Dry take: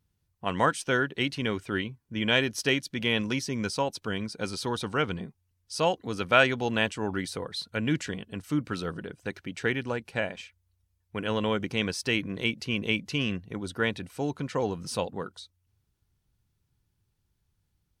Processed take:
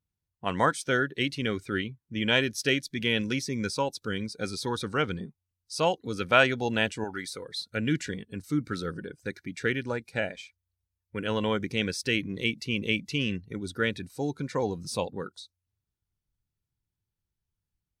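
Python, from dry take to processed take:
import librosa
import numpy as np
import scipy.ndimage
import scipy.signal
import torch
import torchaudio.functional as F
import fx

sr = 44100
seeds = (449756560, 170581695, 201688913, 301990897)

y = fx.noise_reduce_blind(x, sr, reduce_db=12)
y = fx.low_shelf(y, sr, hz=370.0, db=-11.5, at=(7.04, 7.49))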